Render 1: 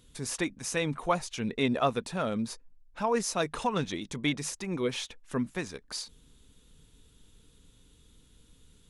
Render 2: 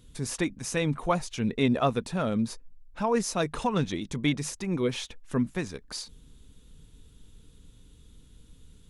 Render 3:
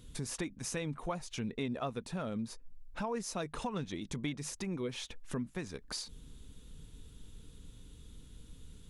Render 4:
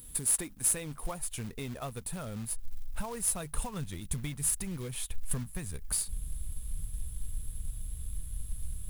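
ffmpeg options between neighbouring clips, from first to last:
-af "lowshelf=f=280:g=7.5"
-af "acompressor=threshold=-39dB:ratio=3,volume=1dB"
-af "aexciter=amount=13:drive=6.7:freq=8.5k,acrusher=bits=3:mode=log:mix=0:aa=0.000001,asubboost=boost=9.5:cutoff=96,volume=-2dB"

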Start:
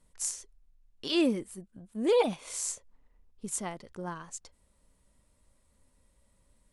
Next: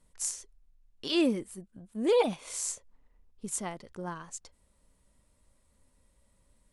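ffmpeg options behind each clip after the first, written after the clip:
-af anull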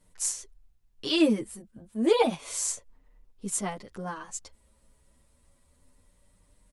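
-filter_complex "[0:a]asplit=2[a][b];[b]adelay=8.2,afreqshift=0.32[c];[a][c]amix=inputs=2:normalize=1,volume=7dB"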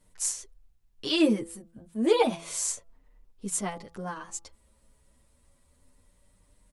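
-af "bandreject=f=167.7:t=h:w=4,bandreject=f=335.4:t=h:w=4,bandreject=f=503.1:t=h:w=4,bandreject=f=670.8:t=h:w=4,bandreject=f=838.5:t=h:w=4,bandreject=f=1.0062k:t=h:w=4,bandreject=f=1.1739k:t=h:w=4,bandreject=f=1.3416k:t=h:w=4"

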